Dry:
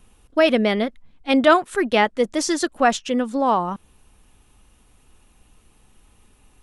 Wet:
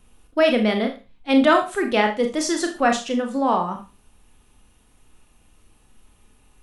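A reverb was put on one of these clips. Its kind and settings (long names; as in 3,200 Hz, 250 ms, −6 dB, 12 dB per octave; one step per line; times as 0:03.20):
four-comb reverb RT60 0.31 s, combs from 26 ms, DRR 4 dB
level −2.5 dB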